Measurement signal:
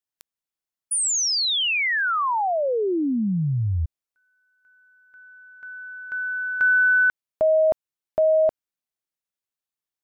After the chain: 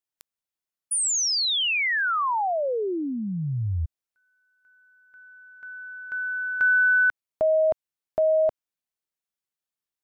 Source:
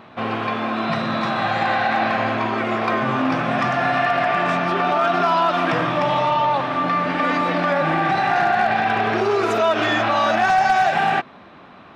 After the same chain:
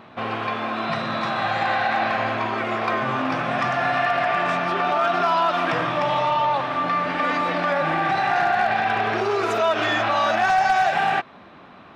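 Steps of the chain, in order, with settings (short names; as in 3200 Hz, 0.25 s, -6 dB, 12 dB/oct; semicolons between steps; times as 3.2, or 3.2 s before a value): dynamic EQ 220 Hz, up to -5 dB, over -35 dBFS, Q 0.83; gain -1.5 dB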